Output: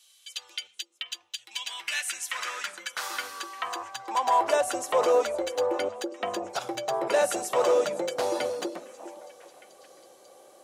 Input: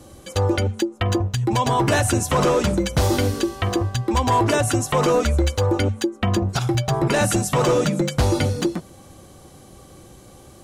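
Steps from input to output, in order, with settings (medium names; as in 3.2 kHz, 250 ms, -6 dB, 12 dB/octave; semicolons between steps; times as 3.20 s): high-pass sweep 3.1 kHz -> 550 Hz, 1.40–4.85 s; repeats whose band climbs or falls 406 ms, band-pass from 300 Hz, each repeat 1.4 oct, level -11 dB; trim -8 dB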